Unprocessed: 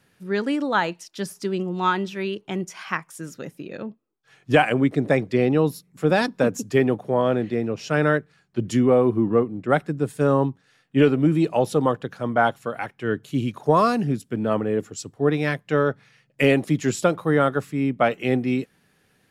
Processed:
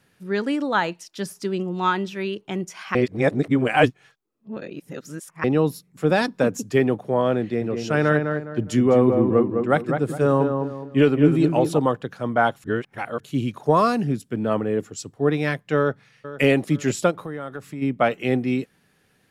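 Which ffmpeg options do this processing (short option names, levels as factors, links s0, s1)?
-filter_complex "[0:a]asettb=1/sr,asplit=3[s0][s1][s2];[s0]atrim=end=7.414[s3];[s1]atrim=start=7.41:end=11.79,asetpts=PTS-STARTPTS,afade=t=in:d=0.004:c=qsin,afade=t=out:st=4.376:d=0.004:c=qsin,asplit=2[s4][s5];[s5]adelay=206,lowpass=f=1800:p=1,volume=0.562,asplit=2[s6][s7];[s7]adelay=206,lowpass=f=1800:p=1,volume=0.35,asplit=2[s8][s9];[s9]adelay=206,lowpass=f=1800:p=1,volume=0.35,asplit=2[s10][s11];[s11]adelay=206,lowpass=f=1800:p=1,volume=0.35[s12];[s4][s6][s8][s10][s12]amix=inputs=5:normalize=0,atrim=end_sample=193158[s13];[s2]atrim=start=11.786[s14];[s3][s13]acrossfade=d=0.004:c1=hsin:c2=qsin[s15];[s15][s14]acrossfade=d=0.004:c1=qsin:c2=hsin,asplit=2[s16][s17];[s17]afade=t=in:st=15.77:d=0.01,afade=t=out:st=16.44:d=0.01,aecho=0:1:470|940|1410:0.188365|0.0659277|0.0230747[s18];[s16][s18]amix=inputs=2:normalize=0,asplit=3[s19][s20][s21];[s19]afade=t=out:st=17.1:d=0.02[s22];[s20]acompressor=threshold=0.0355:ratio=5:attack=3.2:release=140:knee=1:detection=peak,afade=t=in:st=17.1:d=0.02,afade=t=out:st=17.81:d=0.02[s23];[s21]afade=t=in:st=17.81:d=0.02[s24];[s22][s23][s24]amix=inputs=3:normalize=0,asplit=5[s25][s26][s27][s28][s29];[s25]atrim=end=2.952[s30];[s26]atrim=start=2.948:end=5.442,asetpts=PTS-STARTPTS,areverse[s31];[s27]atrim=start=5.438:end=12.642[s32];[s28]atrim=start=12.638:end=13.202,asetpts=PTS-STARTPTS,areverse[s33];[s29]atrim=start=13.198[s34];[s30][s31]acrossfade=d=0.004:c1=hsin:c2=hsin[s35];[s35][s32]acrossfade=d=0.004:c1=hsin:c2=hsin[s36];[s36][s33]acrossfade=d=0.004:c1=hsin:c2=hsin[s37];[s37][s34]acrossfade=d=0.004:c1=hsin:c2=hsin"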